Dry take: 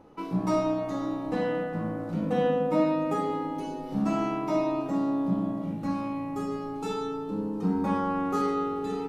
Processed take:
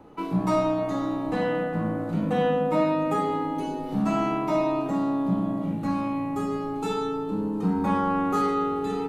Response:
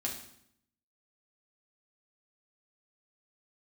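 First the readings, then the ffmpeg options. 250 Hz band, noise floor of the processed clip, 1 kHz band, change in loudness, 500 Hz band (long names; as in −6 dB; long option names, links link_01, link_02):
+2.5 dB, −32 dBFS, +4.0 dB, +3.0 dB, +2.5 dB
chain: -filter_complex "[0:a]equalizer=frequency=5400:width_type=o:width=0.32:gain=-6.5,bandreject=frequency=530:width=16,acrossover=split=210|520|2400[link_01][link_02][link_03][link_04];[link_02]alimiter=level_in=6.5dB:limit=-24dB:level=0:latency=1,volume=-6.5dB[link_05];[link_01][link_05][link_03][link_04]amix=inputs=4:normalize=0,volume=4.5dB"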